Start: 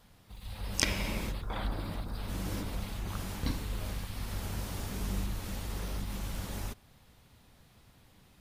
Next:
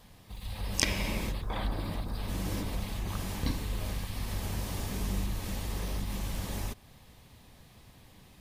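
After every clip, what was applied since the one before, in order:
notch filter 1,400 Hz, Q 8.1
in parallel at −2 dB: downward compressor, threshold −41 dBFS, peak gain reduction 18 dB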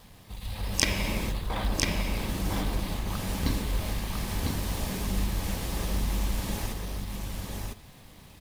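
in parallel at −8 dB: log-companded quantiser 4 bits
on the sum: single-tap delay 1,001 ms −3.5 dB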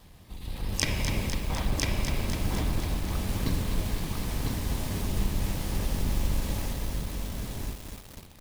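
sub-octave generator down 1 octave, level +3 dB
feedback echo at a low word length 251 ms, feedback 80%, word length 6 bits, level −7 dB
level −3.5 dB

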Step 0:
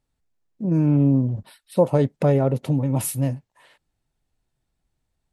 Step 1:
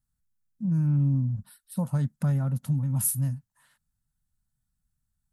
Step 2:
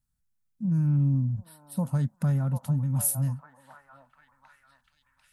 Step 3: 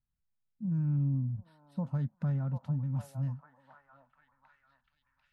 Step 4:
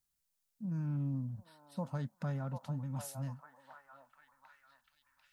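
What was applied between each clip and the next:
drawn EQ curve 220 Hz 0 dB, 370 Hz −26 dB, 1,500 Hz −2 dB, 2,300 Hz −14 dB, 11,000 Hz +6 dB; level −3 dB
echo through a band-pass that steps 744 ms, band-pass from 790 Hz, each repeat 0.7 octaves, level −3 dB
high-frequency loss of the air 210 metres; level −6 dB
bass and treble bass −11 dB, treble +10 dB; level +3 dB

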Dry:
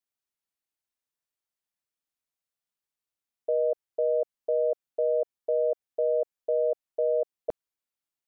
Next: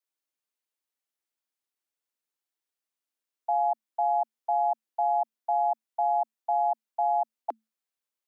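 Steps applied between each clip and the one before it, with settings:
frequency shifter +220 Hz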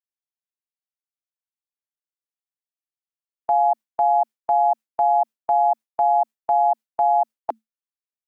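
noise gate with hold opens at −20 dBFS
level +7.5 dB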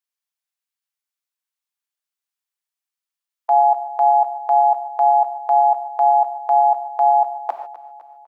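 high-pass filter 900 Hz 12 dB per octave
repeating echo 254 ms, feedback 59%, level −16.5 dB
reverb whose tail is shaped and stops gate 170 ms flat, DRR 5.5 dB
level +6 dB

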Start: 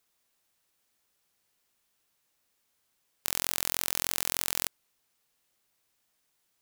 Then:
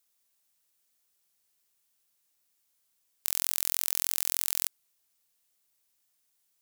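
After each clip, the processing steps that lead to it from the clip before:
high-shelf EQ 4,100 Hz +11 dB
level −8 dB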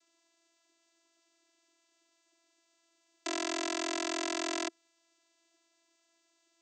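channel vocoder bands 16, saw 334 Hz
level +4 dB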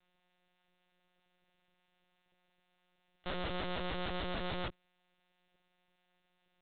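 tube saturation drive 30 dB, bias 0.65
one-pitch LPC vocoder at 8 kHz 180 Hz
level +2.5 dB

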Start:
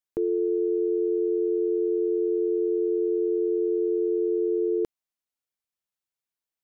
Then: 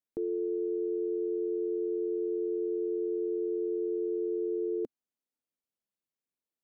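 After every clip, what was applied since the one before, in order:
octave-band graphic EQ 125/250/500 Hz +4/+12/+7 dB
brickwall limiter −18 dBFS, peak gain reduction 9 dB
level −8 dB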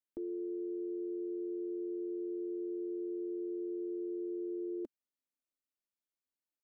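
comb filter 3.3 ms, depth 55%
level −7.5 dB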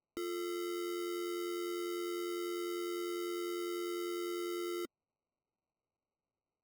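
decimation without filtering 26×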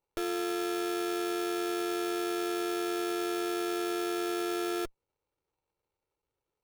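lower of the sound and its delayed copy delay 2.2 ms
level +8 dB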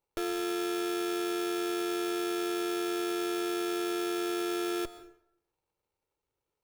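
dense smooth reverb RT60 0.69 s, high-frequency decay 0.7×, pre-delay 115 ms, DRR 14 dB

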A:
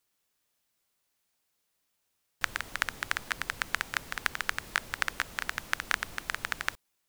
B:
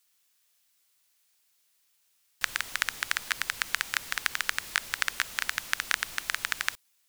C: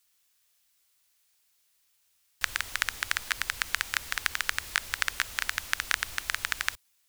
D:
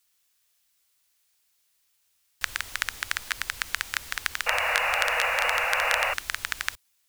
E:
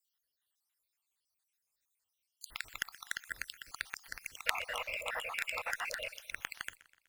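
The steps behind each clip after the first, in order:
tilt shelving filter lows −7.5 dB, about 1,100 Hz; in parallel at +1.5 dB: brickwall limiter −8 dBFS, peak gain reduction 9 dB; on the sum: level −5.5 dB
low shelf with overshoot 110 Hz +7.5 dB, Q 1.5
sound drawn into the spectrogram noise, 0:04.46–0:06.14, 470–2,900 Hz −26 dBFS
time-frequency cells dropped at random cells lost 67%; harmonic generator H 3 −13 dB, 8 −43 dB, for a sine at −4.5 dBFS; feedback echo with a swinging delay time 124 ms, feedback 51%, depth 54 cents, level −19.5 dB

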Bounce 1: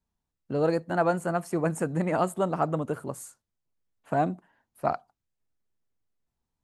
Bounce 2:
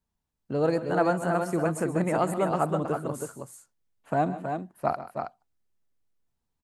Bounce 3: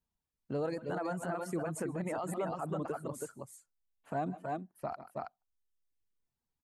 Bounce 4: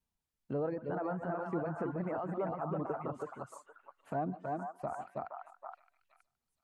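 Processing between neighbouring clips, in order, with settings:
multi-tap delay 131/153/313/322 ms −14.5/−18.5/−19/−6 dB
brickwall limiter −21 dBFS, peak gain reduction 10 dB; reverb reduction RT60 0.83 s; level −5 dB
treble cut that deepens with the level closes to 1,400 Hz, closed at −34.5 dBFS; echo through a band-pass that steps 469 ms, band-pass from 1,100 Hz, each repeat 1.4 octaves, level −1.5 dB

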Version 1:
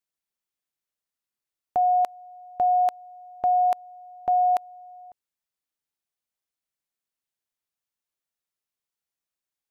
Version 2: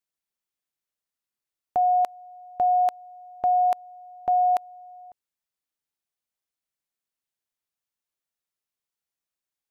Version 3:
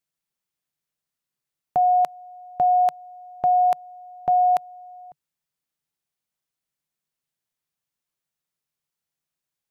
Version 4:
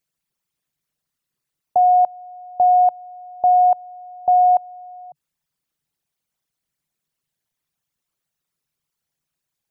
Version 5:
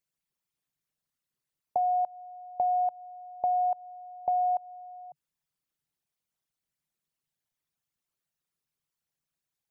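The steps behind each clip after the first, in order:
no processing that can be heard
parametric band 150 Hz +10.5 dB 0.56 octaves; level +2.5 dB
spectral envelope exaggerated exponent 2; level +4.5 dB
downward compressor 5 to 1, threshold −18 dBFS, peak gain reduction 6 dB; level −7 dB

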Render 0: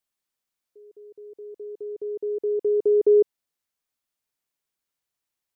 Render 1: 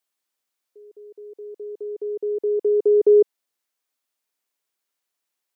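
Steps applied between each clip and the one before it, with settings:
high-pass filter 270 Hz
level +3.5 dB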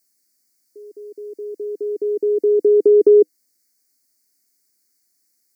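drawn EQ curve 140 Hz 0 dB, 210 Hz +13 dB, 310 Hz +12 dB, 490 Hz 0 dB, 700 Hz 0 dB, 1,000 Hz −12 dB, 1,500 Hz 0 dB, 2,200 Hz +4 dB, 3,100 Hz −29 dB, 4,500 Hz +13 dB
downward compressor 2 to 1, threshold −13 dBFS, peak gain reduction 4 dB
level +2.5 dB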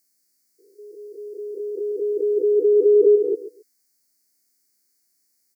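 spectrum averaged block by block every 200 ms
repeating echo 134 ms, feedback 17%, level −13 dB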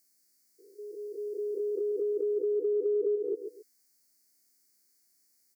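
downward compressor 4 to 1, threshold −28 dBFS, peak gain reduction 14 dB
level −1 dB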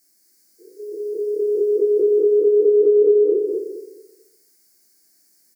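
on a send: repeating echo 216 ms, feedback 28%, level −4 dB
on the sum: rectangular room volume 41 cubic metres, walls mixed, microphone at 0.86 metres
level +5 dB

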